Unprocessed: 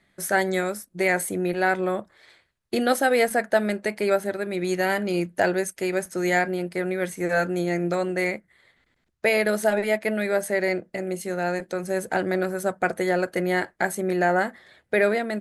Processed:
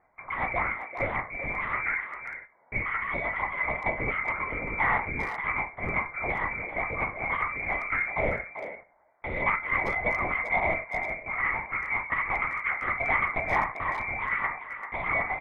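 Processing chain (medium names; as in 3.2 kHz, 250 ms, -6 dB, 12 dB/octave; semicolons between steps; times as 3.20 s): spectral sustain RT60 0.34 s; high-pass 470 Hz 24 dB/octave; in parallel at +3 dB: level held to a coarse grid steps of 22 dB; on the sum: frequency inversion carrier 2.7 kHz; Chebyshev shaper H 3 -34 dB, 7 -25 dB, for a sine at -1.5 dBFS; distance through air 290 m; compressor with a negative ratio -27 dBFS, ratio -1; LPC vocoder at 8 kHz whisper; speakerphone echo 390 ms, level -9 dB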